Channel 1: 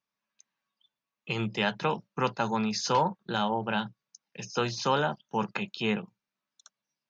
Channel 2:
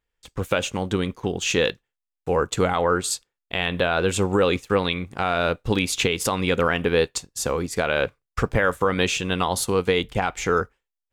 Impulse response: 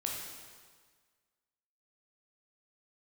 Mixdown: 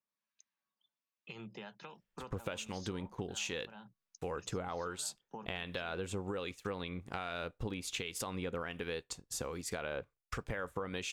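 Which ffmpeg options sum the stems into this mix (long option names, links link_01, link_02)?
-filter_complex "[0:a]highpass=130,acompressor=threshold=-37dB:ratio=8,volume=-6dB[link_01];[1:a]adelay=1950,volume=-5dB[link_02];[link_01][link_02]amix=inputs=2:normalize=0,acrossover=split=1500[link_03][link_04];[link_03]aeval=exprs='val(0)*(1-0.5/2+0.5/2*cos(2*PI*1.3*n/s))':channel_layout=same[link_05];[link_04]aeval=exprs='val(0)*(1-0.5/2-0.5/2*cos(2*PI*1.3*n/s))':channel_layout=same[link_06];[link_05][link_06]amix=inputs=2:normalize=0,acompressor=threshold=-37dB:ratio=5"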